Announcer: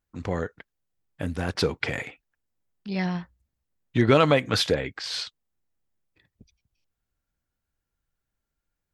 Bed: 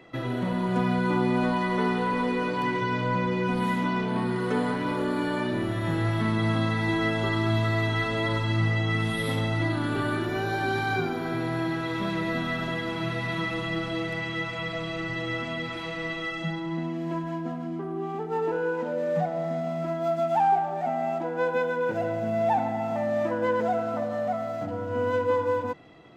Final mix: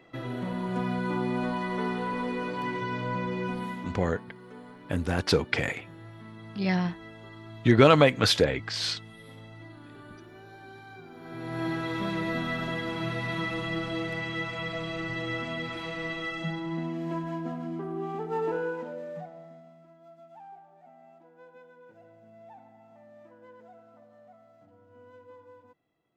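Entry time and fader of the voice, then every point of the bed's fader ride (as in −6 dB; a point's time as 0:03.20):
3.70 s, +1.0 dB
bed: 0:03.46 −5 dB
0:04.31 −20.5 dB
0:11.02 −20.5 dB
0:11.66 −2 dB
0:18.56 −2 dB
0:19.87 −26.5 dB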